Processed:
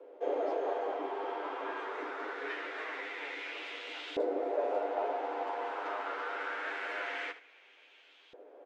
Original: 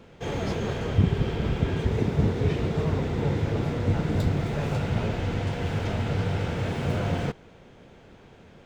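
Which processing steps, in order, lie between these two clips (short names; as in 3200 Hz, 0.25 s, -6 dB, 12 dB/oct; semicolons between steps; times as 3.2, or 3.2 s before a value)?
steep high-pass 270 Hz 96 dB/oct; on a send: early reflections 10 ms -5 dB, 77 ms -13 dB; on the sum: LFO band-pass saw up 0.24 Hz 500–3300 Hz; gain +3.5 dB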